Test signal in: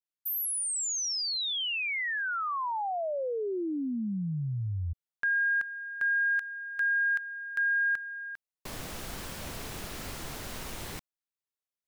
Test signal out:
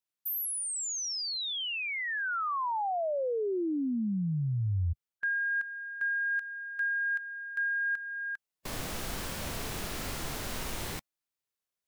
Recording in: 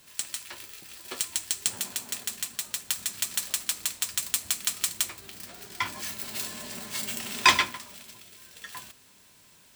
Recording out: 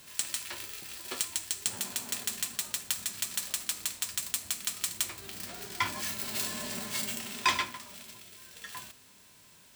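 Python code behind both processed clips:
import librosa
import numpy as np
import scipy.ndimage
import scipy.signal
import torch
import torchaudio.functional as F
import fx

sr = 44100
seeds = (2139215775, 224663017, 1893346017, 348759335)

y = fx.hpss(x, sr, part='percussive', gain_db=-5)
y = fx.rider(y, sr, range_db=5, speed_s=0.5)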